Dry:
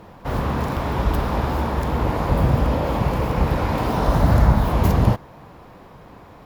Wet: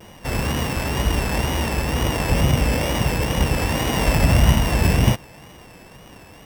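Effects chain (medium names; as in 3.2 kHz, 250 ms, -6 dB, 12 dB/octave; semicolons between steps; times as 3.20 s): sorted samples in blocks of 16 samples; wow and flutter 84 cents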